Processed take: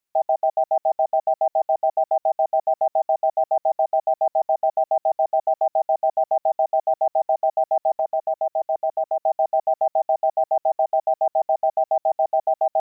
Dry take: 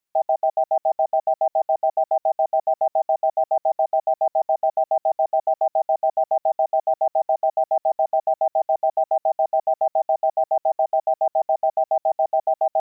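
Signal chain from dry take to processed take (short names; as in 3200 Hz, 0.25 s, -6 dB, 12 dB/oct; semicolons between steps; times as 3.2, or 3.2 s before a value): 7.92–9.21 dynamic EQ 790 Hz, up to -4 dB, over -31 dBFS, Q 2.4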